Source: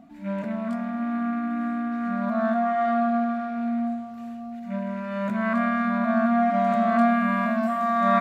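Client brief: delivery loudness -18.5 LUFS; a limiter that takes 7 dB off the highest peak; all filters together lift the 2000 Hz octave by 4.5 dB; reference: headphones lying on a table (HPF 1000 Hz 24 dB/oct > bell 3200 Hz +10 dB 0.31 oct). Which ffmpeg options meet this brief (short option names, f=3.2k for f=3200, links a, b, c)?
-af "equalizer=f=2k:t=o:g=5.5,alimiter=limit=-15.5dB:level=0:latency=1,highpass=f=1k:w=0.5412,highpass=f=1k:w=1.3066,equalizer=f=3.2k:t=o:w=0.31:g=10,volume=12dB"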